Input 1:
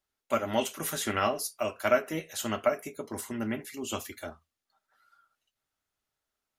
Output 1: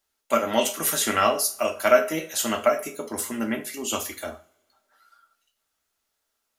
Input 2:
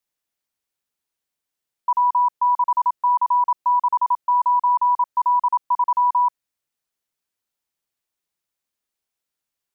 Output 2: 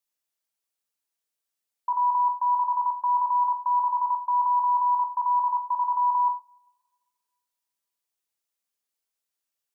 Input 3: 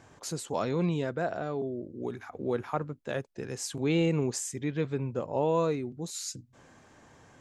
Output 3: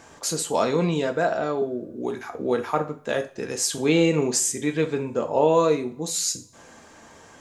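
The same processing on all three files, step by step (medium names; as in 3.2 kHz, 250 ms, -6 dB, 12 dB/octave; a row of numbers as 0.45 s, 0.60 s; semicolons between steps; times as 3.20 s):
tone controls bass -6 dB, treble +4 dB; two-slope reverb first 0.35 s, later 1.7 s, from -27 dB, DRR 5.5 dB; normalise loudness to -24 LUFS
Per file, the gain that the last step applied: +5.5 dB, -5.5 dB, +7.5 dB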